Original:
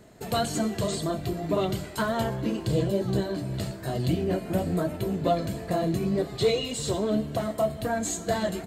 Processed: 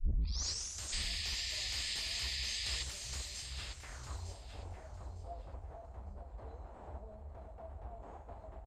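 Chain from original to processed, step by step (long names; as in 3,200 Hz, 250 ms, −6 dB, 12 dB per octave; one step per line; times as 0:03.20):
turntable start at the beginning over 0.83 s
inverse Chebyshev band-stop filter 150–3,200 Hz, stop band 50 dB
dynamic equaliser 7,000 Hz, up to −5 dB, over −54 dBFS, Q 1.2
mid-hump overdrive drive 31 dB, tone 2,500 Hz, clips at −30 dBFS
sound drawn into the spectrogram noise, 0:00.92–0:02.83, 1,700–5,200 Hz −47 dBFS
low-pass filter sweep 5,700 Hz → 760 Hz, 0:03.38–0:04.31
on a send: repeating echo 906 ms, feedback 19%, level −10 dB
on the sum: level +2.5 dB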